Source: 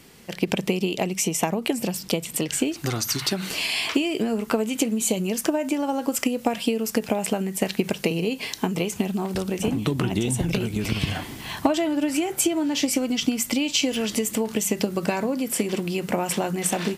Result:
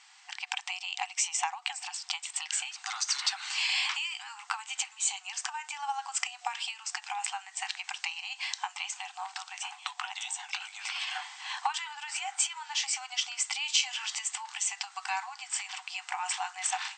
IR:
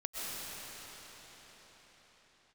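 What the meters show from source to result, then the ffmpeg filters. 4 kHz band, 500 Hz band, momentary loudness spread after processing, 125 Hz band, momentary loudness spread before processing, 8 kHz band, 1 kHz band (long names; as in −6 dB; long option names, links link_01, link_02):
−3.0 dB, below −30 dB, 9 LU, below −40 dB, 4 LU, −4.0 dB, −4.0 dB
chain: -af "afftfilt=real='re*between(b*sr/4096,730,8500)':imag='im*between(b*sr/4096,730,8500)':win_size=4096:overlap=0.75,volume=-3dB"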